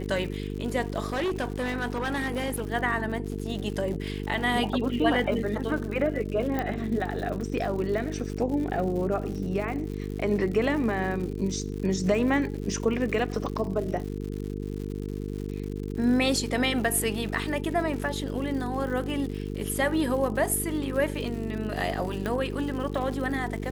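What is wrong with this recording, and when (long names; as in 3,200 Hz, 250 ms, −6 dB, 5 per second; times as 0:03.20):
mains buzz 50 Hz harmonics 9 −33 dBFS
surface crackle 150 per second −35 dBFS
0:01.06–0:02.68: clipping −24.5 dBFS
0:06.59: click −16 dBFS
0:22.26: click −17 dBFS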